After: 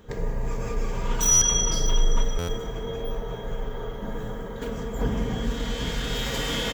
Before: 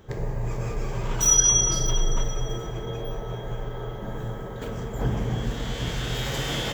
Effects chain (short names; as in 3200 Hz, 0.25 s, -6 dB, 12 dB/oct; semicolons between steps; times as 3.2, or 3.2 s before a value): notch 720 Hz, Q 13; comb 4.2 ms, depth 54%; stuck buffer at 1.31/2.38, samples 512, times 8